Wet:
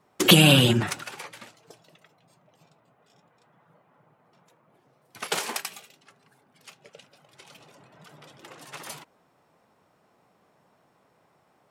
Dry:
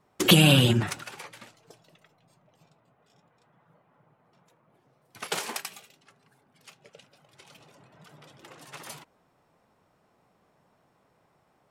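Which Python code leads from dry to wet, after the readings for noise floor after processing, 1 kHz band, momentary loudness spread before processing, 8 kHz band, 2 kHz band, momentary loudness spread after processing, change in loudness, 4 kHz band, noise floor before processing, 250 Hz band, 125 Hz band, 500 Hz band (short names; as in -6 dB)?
-66 dBFS, +3.0 dB, 22 LU, +3.0 dB, +3.0 dB, 24 LU, +2.0 dB, +3.0 dB, -68 dBFS, +1.5 dB, +0.5 dB, +2.5 dB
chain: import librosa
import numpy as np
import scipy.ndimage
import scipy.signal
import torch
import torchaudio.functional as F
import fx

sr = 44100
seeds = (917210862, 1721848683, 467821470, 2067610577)

y = fx.highpass(x, sr, hz=130.0, slope=6)
y = F.gain(torch.from_numpy(y), 3.0).numpy()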